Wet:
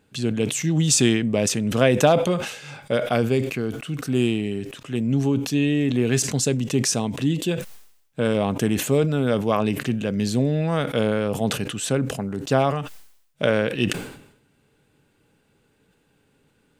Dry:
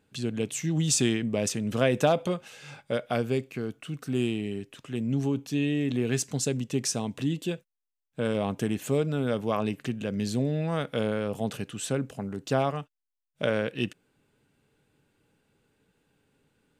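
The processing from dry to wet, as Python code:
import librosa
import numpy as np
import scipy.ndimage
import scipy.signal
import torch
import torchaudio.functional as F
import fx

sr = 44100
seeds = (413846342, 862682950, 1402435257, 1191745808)

y = fx.sustainer(x, sr, db_per_s=78.0)
y = F.gain(torch.from_numpy(y), 6.0).numpy()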